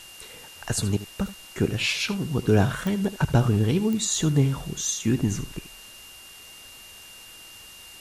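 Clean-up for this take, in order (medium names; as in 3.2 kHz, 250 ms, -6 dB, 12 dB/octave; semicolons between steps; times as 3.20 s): de-click; band-stop 2.8 kHz, Q 30; noise reduction 24 dB, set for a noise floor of -46 dBFS; inverse comb 77 ms -15 dB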